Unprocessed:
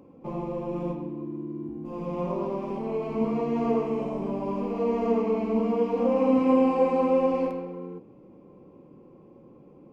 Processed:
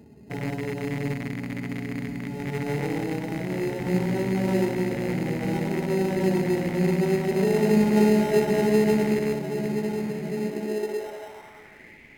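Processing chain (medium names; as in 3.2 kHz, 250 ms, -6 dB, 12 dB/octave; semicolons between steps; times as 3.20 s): rattle on loud lows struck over -36 dBFS, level -23 dBFS; on a send: echo that smears into a reverb 940 ms, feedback 63%, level -9.5 dB; on the sum: high-pass sweep 83 Hz -> 2.6 kHz, 7.97–9.73 s; in parallel at -4.5 dB: sample-rate reducer 2.8 kHz, jitter 0%; on the sum: wide varispeed 0.815×; trim -3 dB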